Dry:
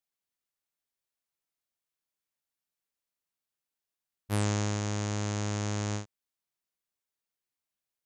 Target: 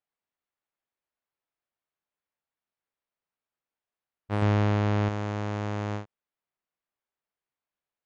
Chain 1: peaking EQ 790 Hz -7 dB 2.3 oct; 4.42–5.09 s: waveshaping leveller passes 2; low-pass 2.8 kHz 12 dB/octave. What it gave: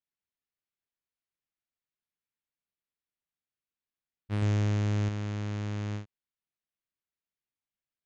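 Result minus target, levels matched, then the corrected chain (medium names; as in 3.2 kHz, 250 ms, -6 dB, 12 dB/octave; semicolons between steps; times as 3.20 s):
1 kHz band -8.0 dB
peaking EQ 790 Hz +4.5 dB 2.3 oct; 4.42–5.09 s: waveshaping leveller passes 2; low-pass 2.8 kHz 12 dB/octave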